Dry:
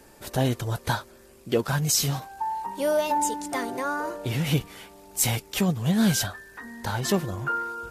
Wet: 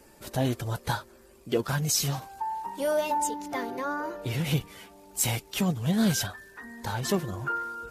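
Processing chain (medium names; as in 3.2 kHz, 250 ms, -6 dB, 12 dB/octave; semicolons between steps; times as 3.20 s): coarse spectral quantiser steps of 15 dB; 3.27–4.22 s: peaking EQ 8.7 kHz -13.5 dB 0.58 oct; trim -2.5 dB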